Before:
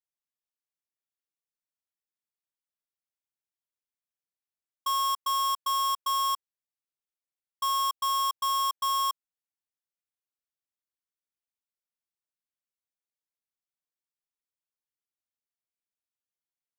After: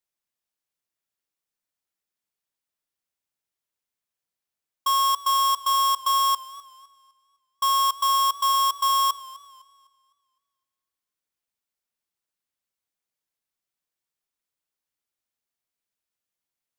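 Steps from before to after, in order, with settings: modulated delay 254 ms, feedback 36%, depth 57 cents, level -20 dB; trim +6 dB

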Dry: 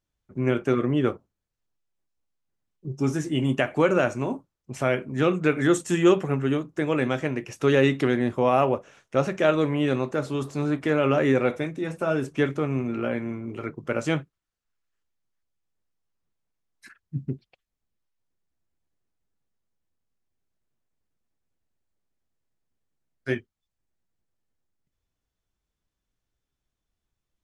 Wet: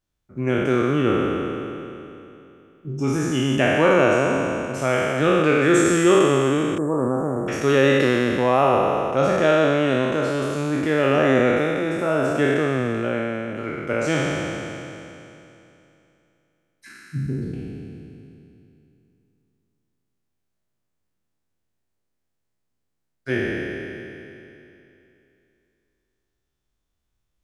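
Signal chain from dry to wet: spectral sustain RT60 2.88 s; 6.78–7.48 s: Chebyshev band-stop 1.1–8.1 kHz, order 3

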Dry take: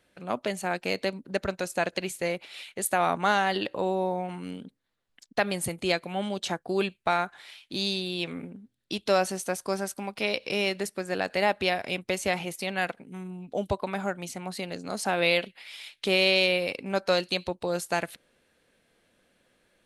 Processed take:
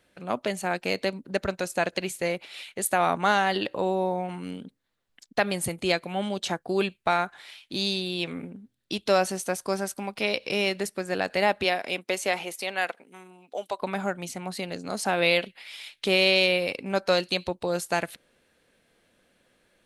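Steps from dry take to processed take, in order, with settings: 11.63–13.78 s: high-pass 220 Hz -> 690 Hz 12 dB/octave; trim +1.5 dB

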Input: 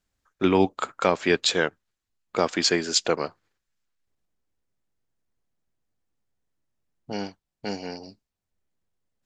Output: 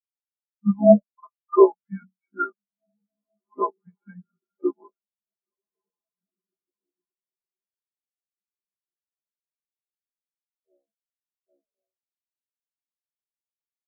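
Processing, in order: bass shelf 180 Hz -7.5 dB; hum notches 50/100/150/200/250/300/350/400 Hz; comb 5.8 ms, depth 99%; echo that smears into a reverb 1512 ms, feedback 52%, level -11 dB; granular stretch 1.5×, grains 30 ms; mistuned SSB -180 Hz 220–2600 Hz; peaking EQ 710 Hz +11.5 dB 2.5 oct; spectral contrast expander 4:1; trim -3.5 dB

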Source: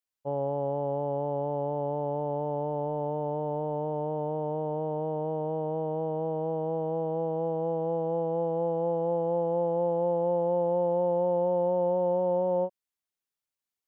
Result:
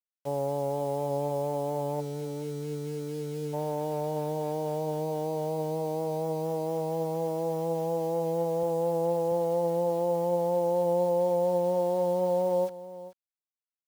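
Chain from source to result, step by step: 2.00–3.53 s: time-frequency box 520–1300 Hz -23 dB; 8.63–9.32 s: high-pass 88 Hz 12 dB/octave; bit crusher 8-bit; delay 436 ms -15.5 dB

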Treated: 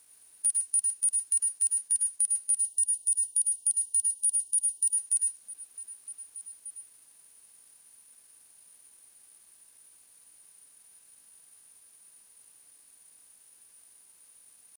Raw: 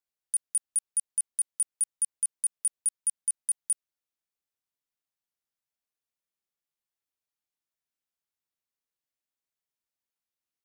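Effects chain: spectral levelling over time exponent 0.4; dynamic bell 6.5 kHz, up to +6 dB, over -41 dBFS, Q 0.88; repeats whose band climbs or falls 221 ms, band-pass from 200 Hz, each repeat 1.4 oct, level -8.5 dB; in parallel at +1 dB: compression, threshold -33 dBFS, peak gain reduction 14 dB; on the sum: tempo 0.72×; on a send at -2 dB: reverberation RT60 0.15 s, pre-delay 100 ms; on the sum: spectral selection erased 2.60–4.98 s, 1–2.7 kHz; trim -6.5 dB

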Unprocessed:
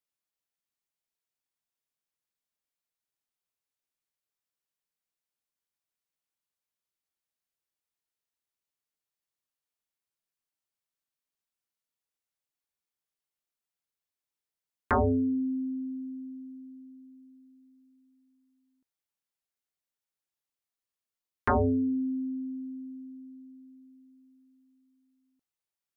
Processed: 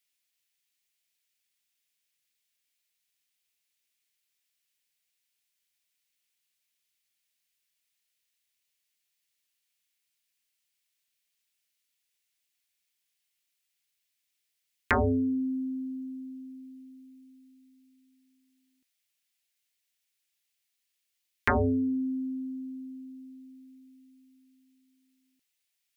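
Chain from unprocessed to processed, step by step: resonant high shelf 1.6 kHz +11 dB, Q 1.5

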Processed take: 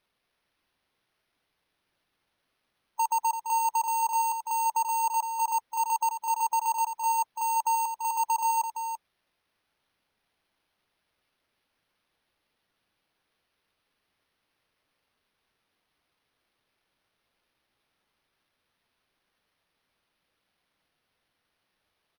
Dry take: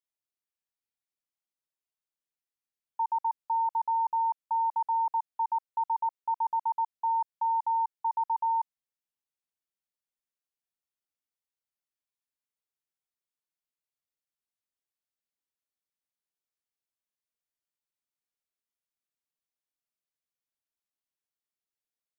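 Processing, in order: expander on every frequency bin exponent 1.5; in parallel at +2.5 dB: compressor with a negative ratio -40 dBFS, ratio -1; on the sum: sample-and-hold 6×; hard clipper -24 dBFS, distortion -19 dB; delay 338 ms -8.5 dB; trim +2 dB

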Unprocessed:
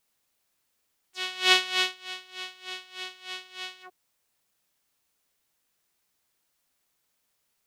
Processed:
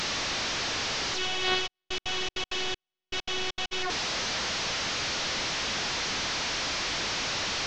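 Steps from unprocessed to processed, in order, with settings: one-bit delta coder 32 kbps, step -19 dBFS; 1.66–3.71 s: trance gate ".xxx.....x.xxx.x" 197 bpm -60 dB; trim -4.5 dB

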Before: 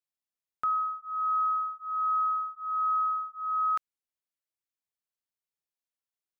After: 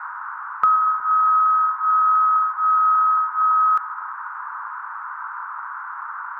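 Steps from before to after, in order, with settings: peaking EQ 1.3 kHz +10.5 dB; compression, threshold -22 dBFS, peak gain reduction 7 dB; bucket-brigade echo 122 ms, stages 1024, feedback 84%, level -12 dB; band noise 920–1500 Hz -40 dBFS; tape noise reduction on one side only encoder only; trim +7.5 dB

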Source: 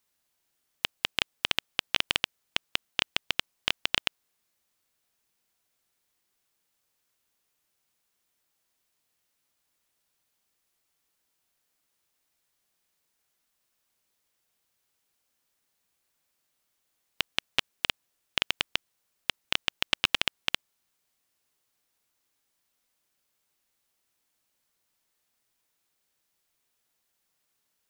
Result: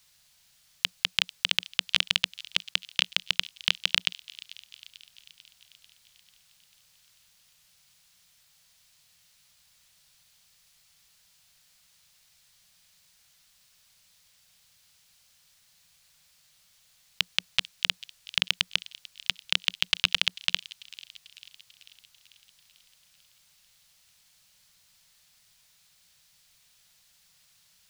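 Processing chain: FFT filter 180 Hz 0 dB, 330 Hz -30 dB, 490 Hz -10 dB, 1.1 kHz -7 dB, 4.4 kHz +3 dB, 15 kHz -6 dB; in parallel at +3 dB: compressor with a negative ratio -38 dBFS, ratio -1; on the sum: feedback echo behind a high-pass 443 ms, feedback 59%, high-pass 3.1 kHz, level -16.5 dB

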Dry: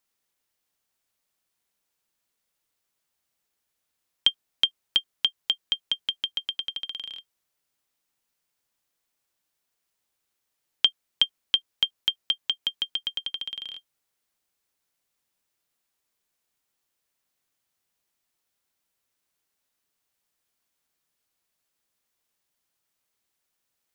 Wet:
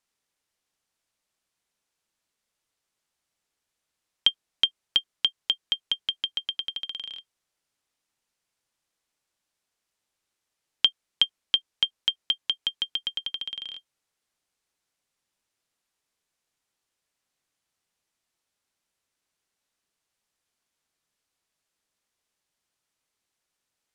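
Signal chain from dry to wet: low-pass 9.9 kHz 12 dB/octave

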